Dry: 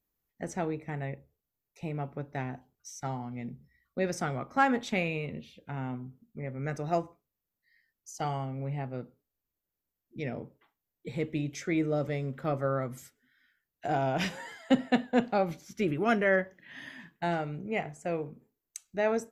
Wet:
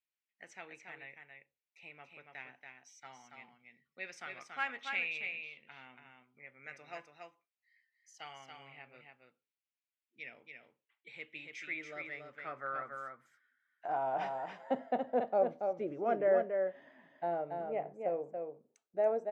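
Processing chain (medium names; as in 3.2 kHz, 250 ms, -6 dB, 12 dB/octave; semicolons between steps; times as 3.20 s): band-pass sweep 2.5 kHz -> 590 Hz, 11.40–15.22 s; delay 282 ms -5 dB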